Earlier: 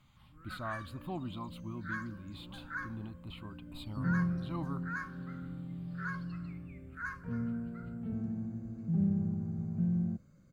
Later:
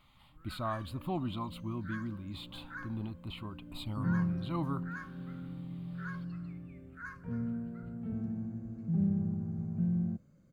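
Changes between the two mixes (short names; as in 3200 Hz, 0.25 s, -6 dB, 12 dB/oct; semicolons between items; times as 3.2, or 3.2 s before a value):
speech +4.5 dB; first sound -5.0 dB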